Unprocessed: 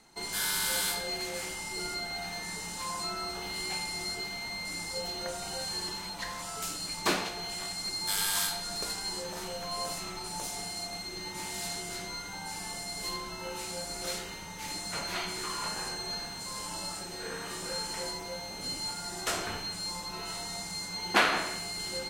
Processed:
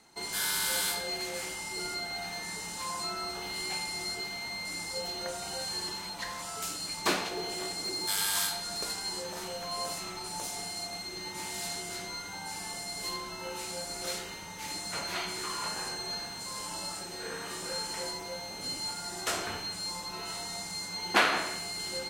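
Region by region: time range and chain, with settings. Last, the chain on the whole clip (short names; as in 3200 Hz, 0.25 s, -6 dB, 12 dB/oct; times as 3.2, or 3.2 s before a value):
7.31–8.06 bell 390 Hz +12.5 dB 0.97 oct + hard clip -29 dBFS
whole clip: HPF 68 Hz 6 dB/oct; bell 170 Hz -2 dB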